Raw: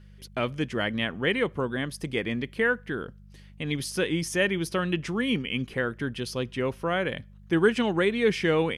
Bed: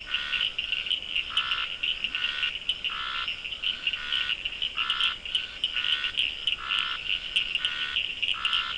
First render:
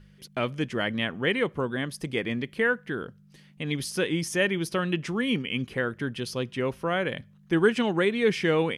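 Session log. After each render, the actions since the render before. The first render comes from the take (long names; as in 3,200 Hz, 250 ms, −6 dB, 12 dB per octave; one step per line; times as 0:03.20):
hum removal 50 Hz, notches 2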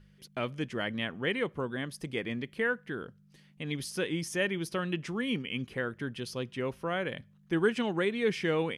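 level −5.5 dB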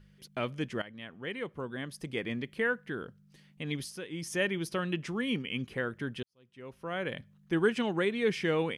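0:00.82–0:02.30: fade in linear, from −15.5 dB
0:03.77–0:04.33: duck −10 dB, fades 0.24 s
0:06.23–0:07.09: fade in quadratic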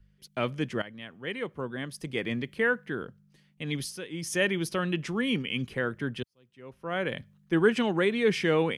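in parallel at −2.5 dB: brickwall limiter −24.5 dBFS, peak gain reduction 10 dB
on the sum: multiband upward and downward expander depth 40%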